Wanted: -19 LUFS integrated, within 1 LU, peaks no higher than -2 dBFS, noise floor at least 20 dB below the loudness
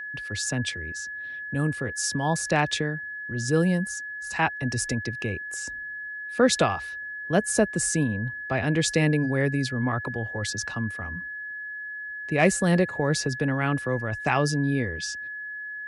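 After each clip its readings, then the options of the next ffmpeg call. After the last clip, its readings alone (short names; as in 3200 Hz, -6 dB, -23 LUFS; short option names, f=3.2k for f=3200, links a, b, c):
steady tone 1700 Hz; tone level -33 dBFS; loudness -26.5 LUFS; peak -8.5 dBFS; loudness target -19.0 LUFS
-> -af "bandreject=f=1.7k:w=30"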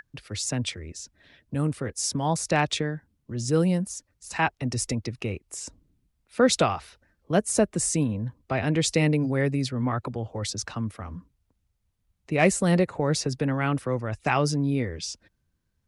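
steady tone none; loudness -26.5 LUFS; peak -8.0 dBFS; loudness target -19.0 LUFS
-> -af "volume=7.5dB,alimiter=limit=-2dB:level=0:latency=1"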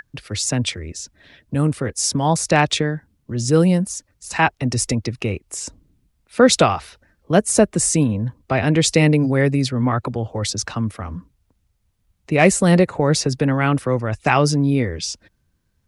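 loudness -19.0 LUFS; peak -2.0 dBFS; noise floor -67 dBFS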